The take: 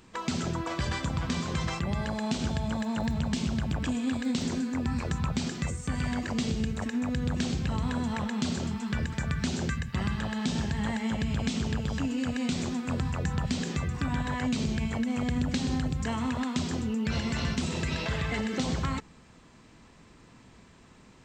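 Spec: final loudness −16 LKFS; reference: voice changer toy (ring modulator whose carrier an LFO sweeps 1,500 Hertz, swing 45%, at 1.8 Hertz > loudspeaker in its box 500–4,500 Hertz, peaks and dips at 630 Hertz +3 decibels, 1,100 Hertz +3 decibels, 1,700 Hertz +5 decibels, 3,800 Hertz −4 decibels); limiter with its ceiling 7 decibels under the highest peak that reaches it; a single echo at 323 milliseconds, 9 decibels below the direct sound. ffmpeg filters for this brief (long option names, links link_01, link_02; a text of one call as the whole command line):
ffmpeg -i in.wav -af "alimiter=limit=-22.5dB:level=0:latency=1,aecho=1:1:323:0.355,aeval=exprs='val(0)*sin(2*PI*1500*n/s+1500*0.45/1.8*sin(2*PI*1.8*n/s))':channel_layout=same,highpass=500,equalizer=frequency=630:width_type=q:width=4:gain=3,equalizer=frequency=1100:width_type=q:width=4:gain=3,equalizer=frequency=1700:width_type=q:width=4:gain=5,equalizer=frequency=3800:width_type=q:width=4:gain=-4,lowpass=frequency=4500:width=0.5412,lowpass=frequency=4500:width=1.3066,volume=14dB" out.wav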